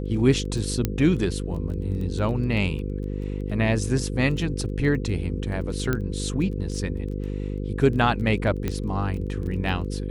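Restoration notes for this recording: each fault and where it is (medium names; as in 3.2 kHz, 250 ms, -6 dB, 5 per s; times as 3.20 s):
buzz 50 Hz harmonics 10 -29 dBFS
crackle 13 per s -32 dBFS
0.85 s: pop -9 dBFS
5.93 s: pop -11 dBFS
8.68 s: pop -13 dBFS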